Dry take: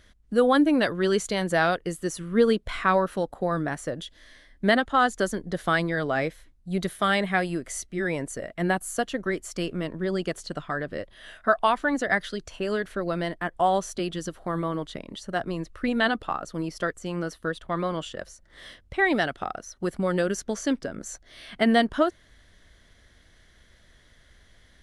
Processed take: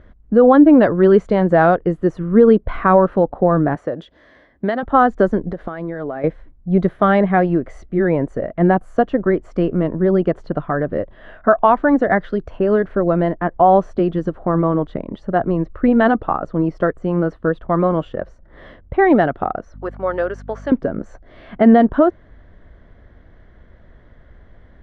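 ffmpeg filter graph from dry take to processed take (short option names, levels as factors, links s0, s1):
-filter_complex "[0:a]asettb=1/sr,asplit=3[s0][s1][s2];[s0]atrim=end=3.754[s3];[s1]atrim=start=3.75:end=4.83,asetpts=PTS-STARTPTS,afade=t=in:d=0.004:c=qsin,afade=t=out:st=1.076:d=0.004:c=qsin,highpass=f=52:w=0.5412,highpass=f=52:w=1.3066,bass=f=250:g=-7,treble=f=4000:g=7,acrossover=split=1600|4200[s4][s5][s6];[s4]acompressor=threshold=0.0282:ratio=4[s7];[s5]acompressor=threshold=0.0251:ratio=4[s8];[s6]acompressor=threshold=0.0112:ratio=4[s9];[s7][s8][s9]amix=inputs=3:normalize=0[s10];[s2]atrim=start=4.826[s11];[s3][s10]acrossfade=d=0.004:c1=hsin:c2=qsin[s12];[s12][s11]acrossfade=d=0.004:c1=qsin:c2=hsin,asettb=1/sr,asplit=3[s13][s14][s15];[s13]atrim=end=5.494[s16];[s14]atrim=start=5.49:end=6.24,asetpts=PTS-STARTPTS,afade=t=in:d=0.004:c=qsin,afade=t=out:st=0.746:d=0.004:c=qsin,equalizer=f=120:t=o:w=0.77:g=-8.5,acompressor=threshold=0.0224:ratio=10:attack=3.2:release=140:knee=1:detection=peak[s17];[s15]atrim=start=6.236[s18];[s16][s17]acrossfade=d=0.004:c1=hsin:c2=qsin[s19];[s19][s18]acrossfade=d=0.004:c1=qsin:c2=hsin,asettb=1/sr,asplit=3[s20][s21][s22];[s20]atrim=end=19.744[s23];[s21]atrim=start=19.74:end=20.72,asetpts=PTS-STARTPTS,afade=t=in:d=0.004:c=qsin,afade=t=out:st=0.976:d=0.004:c=qsin,highpass=690,aeval=exprs='val(0)+0.00447*(sin(2*PI*50*n/s)+sin(2*PI*2*50*n/s)/2+sin(2*PI*3*50*n/s)/3+sin(2*PI*4*50*n/s)/4+sin(2*PI*5*50*n/s)/5)':c=same[s24];[s22]atrim=start=20.716[s25];[s23][s24]acrossfade=d=0.004:c1=hsin:c2=qsin[s26];[s26][s25]acrossfade=d=0.004:c1=qsin:c2=hsin,lowpass=1000,alimiter=level_in=4.73:limit=0.891:release=50:level=0:latency=1,volume=0.891"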